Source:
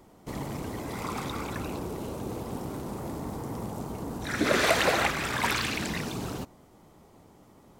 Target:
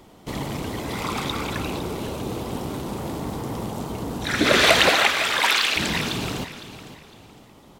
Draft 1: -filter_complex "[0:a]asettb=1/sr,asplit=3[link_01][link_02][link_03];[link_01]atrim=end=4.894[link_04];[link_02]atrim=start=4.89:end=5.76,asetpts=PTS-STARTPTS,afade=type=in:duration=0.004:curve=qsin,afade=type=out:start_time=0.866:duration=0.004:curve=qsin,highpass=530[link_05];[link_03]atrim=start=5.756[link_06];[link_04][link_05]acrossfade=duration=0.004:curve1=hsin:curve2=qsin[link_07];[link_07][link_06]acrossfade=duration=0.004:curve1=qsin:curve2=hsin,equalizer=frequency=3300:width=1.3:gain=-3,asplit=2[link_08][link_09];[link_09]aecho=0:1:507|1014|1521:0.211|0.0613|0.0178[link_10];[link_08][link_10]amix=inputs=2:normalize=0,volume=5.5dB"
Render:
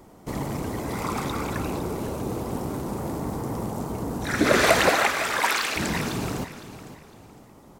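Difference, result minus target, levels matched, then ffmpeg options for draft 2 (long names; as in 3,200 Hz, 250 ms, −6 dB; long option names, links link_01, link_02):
4,000 Hz band −5.5 dB
-filter_complex "[0:a]asettb=1/sr,asplit=3[link_01][link_02][link_03];[link_01]atrim=end=4.894[link_04];[link_02]atrim=start=4.89:end=5.76,asetpts=PTS-STARTPTS,afade=type=in:duration=0.004:curve=qsin,afade=type=out:start_time=0.866:duration=0.004:curve=qsin,highpass=530[link_05];[link_03]atrim=start=5.756[link_06];[link_04][link_05]acrossfade=duration=0.004:curve1=hsin:curve2=qsin[link_07];[link_07][link_06]acrossfade=duration=0.004:curve1=qsin:curve2=hsin,equalizer=frequency=3300:width=1.3:gain=7.5,asplit=2[link_08][link_09];[link_09]aecho=0:1:507|1014|1521:0.211|0.0613|0.0178[link_10];[link_08][link_10]amix=inputs=2:normalize=0,volume=5.5dB"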